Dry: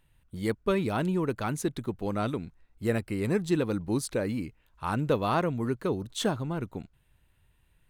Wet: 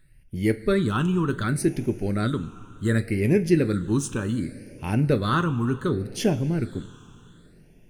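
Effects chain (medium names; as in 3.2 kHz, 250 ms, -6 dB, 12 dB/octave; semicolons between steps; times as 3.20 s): wow and flutter 21 cents; two-slope reverb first 0.21 s, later 3.5 s, from -19 dB, DRR 8 dB; phase shifter stages 8, 0.67 Hz, lowest notch 600–1200 Hz; trim +7 dB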